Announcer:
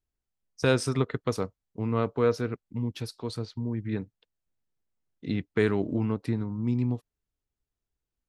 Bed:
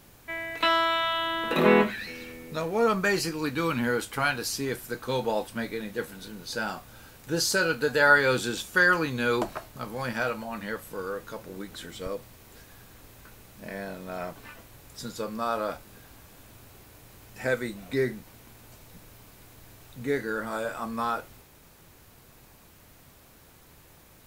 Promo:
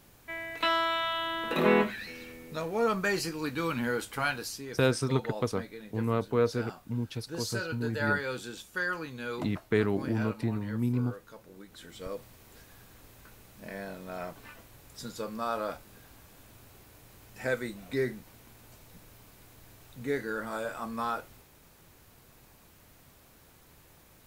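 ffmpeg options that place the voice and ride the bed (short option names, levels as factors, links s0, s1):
-filter_complex "[0:a]adelay=4150,volume=0.794[s0];[1:a]volume=1.5,afade=t=out:st=4.32:d=0.31:silence=0.446684,afade=t=in:st=11.66:d=0.55:silence=0.421697[s1];[s0][s1]amix=inputs=2:normalize=0"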